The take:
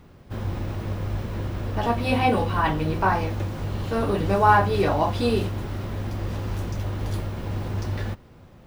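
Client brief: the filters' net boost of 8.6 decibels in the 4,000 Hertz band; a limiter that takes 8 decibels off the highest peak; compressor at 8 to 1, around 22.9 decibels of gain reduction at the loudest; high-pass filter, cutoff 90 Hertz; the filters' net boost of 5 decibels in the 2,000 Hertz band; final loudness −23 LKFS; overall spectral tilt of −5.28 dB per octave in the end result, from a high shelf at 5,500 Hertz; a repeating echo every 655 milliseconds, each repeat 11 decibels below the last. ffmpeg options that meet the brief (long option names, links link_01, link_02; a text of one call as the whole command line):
ffmpeg -i in.wav -af "highpass=90,equalizer=frequency=2000:width_type=o:gain=4.5,equalizer=frequency=4000:width_type=o:gain=6.5,highshelf=frequency=5500:gain=7.5,acompressor=threshold=-35dB:ratio=8,alimiter=level_in=6dB:limit=-24dB:level=0:latency=1,volume=-6dB,aecho=1:1:655|1310|1965:0.282|0.0789|0.0221,volume=17dB" out.wav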